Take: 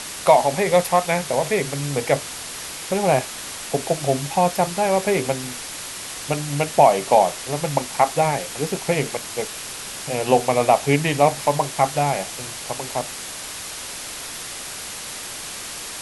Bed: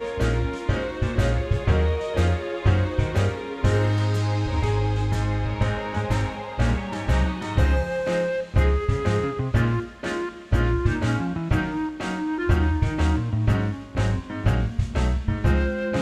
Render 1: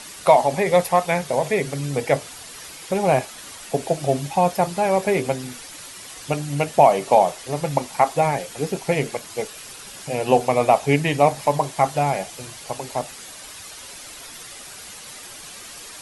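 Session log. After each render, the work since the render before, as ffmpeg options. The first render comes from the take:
-af "afftdn=nr=9:nf=-33"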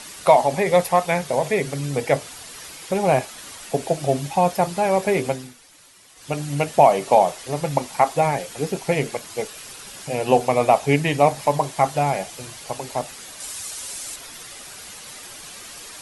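-filter_complex "[0:a]asettb=1/sr,asplit=3[a][b][c];[a]atrim=end=13.404[d];[b]atrim=start=13.4:end=14.16,asetpts=PTS-STARTPTS,afade=t=in:d=0.004:c=qsin,afade=t=out:st=0.756:d=0.004:c=qsin,equalizer=f=8.5k:t=o:w=1.4:g=9[e];[c]atrim=start=14.156[f];[d][e]acrossfade=d=0.004:c1=hsin:c2=qsin[g];[g][f]acrossfade=d=0.004:c1=qsin:c2=hsin,asplit=3[h][i][j];[h]atrim=end=5.54,asetpts=PTS-STARTPTS,afade=t=out:st=5.28:d=0.26:silence=0.251189[k];[i]atrim=start=5.54:end=6.15,asetpts=PTS-STARTPTS,volume=-12dB[l];[j]atrim=start=6.15,asetpts=PTS-STARTPTS,afade=t=in:d=0.26:silence=0.251189[m];[k][l][m]concat=n=3:v=0:a=1"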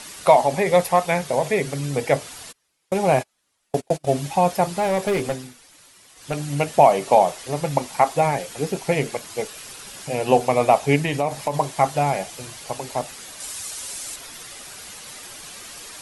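-filter_complex "[0:a]asplit=3[a][b][c];[a]afade=t=out:st=2.51:d=0.02[d];[b]agate=range=-33dB:threshold=-27dB:ratio=16:release=100:detection=peak,afade=t=in:st=2.51:d=0.02,afade=t=out:st=4.06:d=0.02[e];[c]afade=t=in:st=4.06:d=0.02[f];[d][e][f]amix=inputs=3:normalize=0,asettb=1/sr,asplit=3[g][h][i];[g]atrim=end=4.764[j];[h]atrim=start=4.76:end=6.39,asetpts=PTS-STARTPTS,afade=t=in:d=0.004:c=qsin,afade=t=out:st=1.626:d=0.004:c=qsin,volume=17dB,asoftclip=hard,volume=-17dB[k];[i]atrim=start=6.386[l];[j][k]acrossfade=d=0.004:c1=hsin:c2=qsin[m];[m][l]acrossfade=d=0.004:c1=qsin:c2=hsin,asettb=1/sr,asplit=3[n][o][p];[n]atrim=end=10.964[q];[o]atrim=start=10.96:end=11.57,asetpts=PTS-STARTPTS,afade=t=in:d=0.004:c=qsin,afade=t=out:st=0.606:d=0.004:c=qsin,acompressor=threshold=-17dB:ratio=6:attack=3.2:release=140:knee=1:detection=peak[r];[p]atrim=start=11.566[s];[q][r]acrossfade=d=0.004:c1=hsin:c2=qsin[t];[t][s]acrossfade=d=0.004:c1=qsin:c2=hsin"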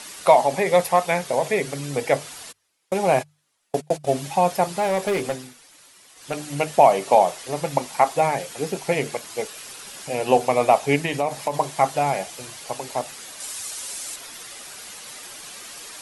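-af "lowshelf=f=160:g=-8,bandreject=f=50:t=h:w=6,bandreject=f=100:t=h:w=6,bandreject=f=150:t=h:w=6"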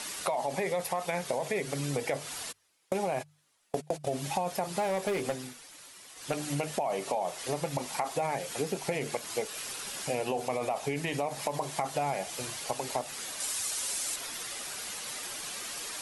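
-af "alimiter=limit=-13.5dB:level=0:latency=1:release=21,acompressor=threshold=-28dB:ratio=6"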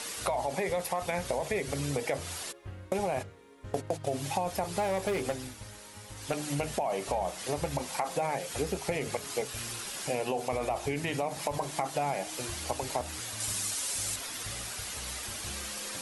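-filter_complex "[1:a]volume=-24.5dB[a];[0:a][a]amix=inputs=2:normalize=0"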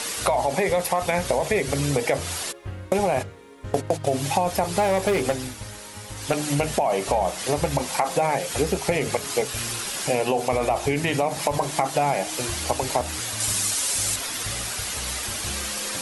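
-af "volume=9dB"

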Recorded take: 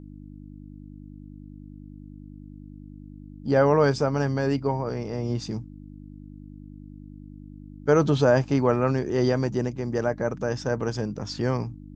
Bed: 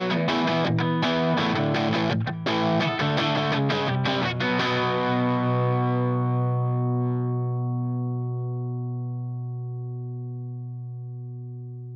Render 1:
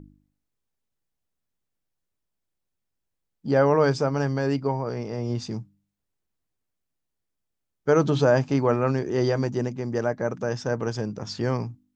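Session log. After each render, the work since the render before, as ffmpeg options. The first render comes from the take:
-af "bandreject=f=50:t=h:w=4,bandreject=f=100:t=h:w=4,bandreject=f=150:t=h:w=4,bandreject=f=200:t=h:w=4,bandreject=f=250:t=h:w=4,bandreject=f=300:t=h:w=4"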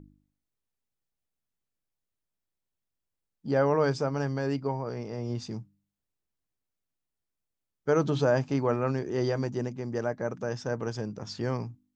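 -af "volume=-5dB"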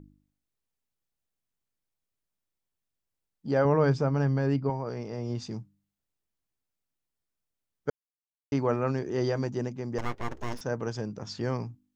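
-filter_complex "[0:a]asettb=1/sr,asplit=3[a][b][c];[a]atrim=end=3.654[d];[b]atrim=start=3.65:end=4.7,asetpts=PTS-STARTPTS,afade=t=in:d=0.004:c=qsin,afade=t=out:st=1.046:d=0.004:c=qsin,bass=f=250:g=7,treble=f=4k:g=-7[e];[c]atrim=start=4.696[f];[d][e]acrossfade=d=0.004:c1=hsin:c2=qsin[g];[g][f]acrossfade=d=0.004:c1=qsin:c2=hsin,asettb=1/sr,asplit=3[h][i][j];[h]atrim=end=9.984[k];[i]atrim=start=9.98:end=10.61,asetpts=PTS-STARTPTS,afade=t=in:d=0.004:c=qsin,afade=t=out:st=0.626:d=0.004:c=qsin,aeval=exprs='abs(val(0))':c=same[l];[j]atrim=start=10.606[m];[k][l]acrossfade=d=0.004:c1=hsin:c2=qsin[n];[n][m]acrossfade=d=0.004:c1=qsin:c2=hsin,asplit=3[o][p][q];[o]atrim=end=7.9,asetpts=PTS-STARTPTS,afade=t=out:st=7.896:d=0.004:c=hsin[r];[p]atrim=start=7.9:end=8.52,asetpts=PTS-STARTPTS,volume=0[s];[q]atrim=start=8.52,asetpts=PTS-STARTPTS,afade=t=in:d=0.004:c=hsin[t];[r][s][t]concat=n=3:v=0:a=1"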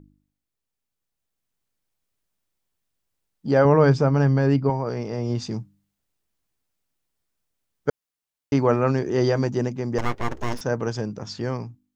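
-af "dynaudnorm=f=550:g=5:m=7.5dB"

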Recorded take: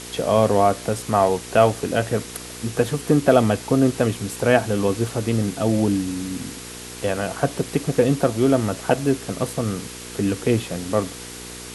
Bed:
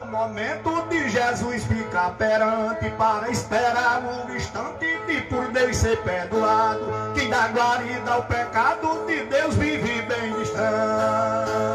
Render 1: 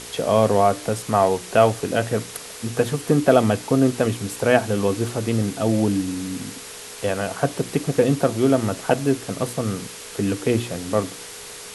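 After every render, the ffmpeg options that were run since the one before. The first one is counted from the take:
-af "bandreject=f=60:t=h:w=4,bandreject=f=120:t=h:w=4,bandreject=f=180:t=h:w=4,bandreject=f=240:t=h:w=4,bandreject=f=300:t=h:w=4,bandreject=f=360:t=h:w=4"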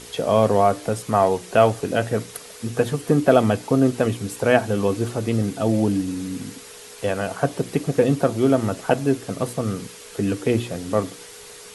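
-af "afftdn=nr=6:nf=-38"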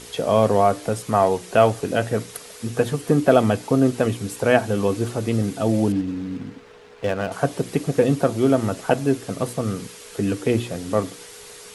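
-filter_complex "[0:a]asettb=1/sr,asplit=3[a][b][c];[a]atrim=end=5.924[d];[b]atrim=start=5.92:end=7.32,asetpts=PTS-STARTPTS,afade=t=in:d=0.004:c=qsin,afade=t=out:st=1.396:d=0.004:c=qsin,adynamicsmooth=sensitivity=5.5:basefreq=1.6k[e];[c]atrim=start=7.316[f];[d][e]acrossfade=d=0.004:c1=hsin:c2=qsin[g];[g][f]acrossfade=d=0.004:c1=qsin:c2=hsin"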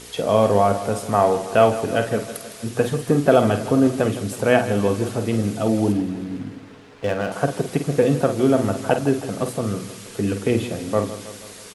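-filter_complex "[0:a]asplit=2[a][b];[b]adelay=49,volume=-9dB[c];[a][c]amix=inputs=2:normalize=0,aecho=1:1:160|320|480|640|800|960:0.2|0.116|0.0671|0.0389|0.0226|0.0131"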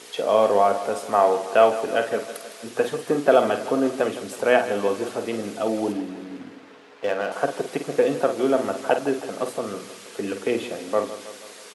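-af "highpass=370,highshelf=f=6.7k:g=-7.5"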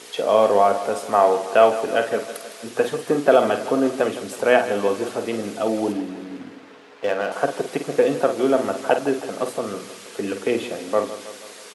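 -af "volume=2dB,alimiter=limit=-3dB:level=0:latency=1"

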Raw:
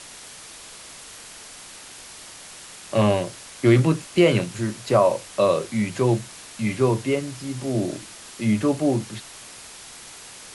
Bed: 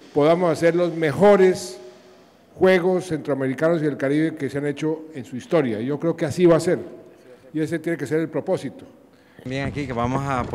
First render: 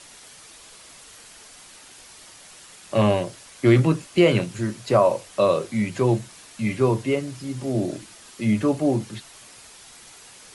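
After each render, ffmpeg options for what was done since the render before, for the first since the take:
-af "afftdn=nr=6:nf=-42"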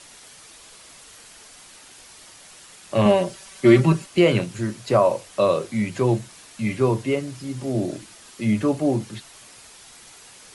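-filter_complex "[0:a]asettb=1/sr,asplit=3[a][b][c];[a]atrim=end=3.054[d];[b]atrim=start=3.05:end=4.06,asetpts=PTS-STARTPTS,afade=t=in:d=0.004:c=qsin,afade=t=out:st=1.006:d=0.004:c=qsin,aecho=1:1:5.2:0.83,atrim=end_sample=44541[e];[c]atrim=start=4.056[f];[d][e]acrossfade=d=0.004:c1=hsin:c2=qsin[g];[g][f]acrossfade=d=0.004:c1=qsin:c2=hsin"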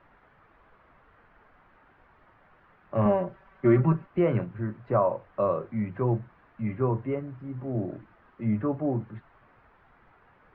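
-af "lowpass=f=1.5k:w=0.5412,lowpass=f=1.5k:w=1.3066,equalizer=f=390:w=0.36:g=-7.5"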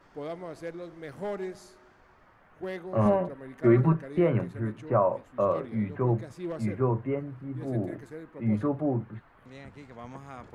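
-filter_complex "[1:a]volume=-20.5dB[a];[0:a][a]amix=inputs=2:normalize=0"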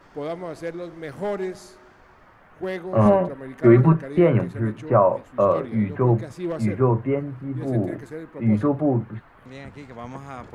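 -af "volume=7dB"

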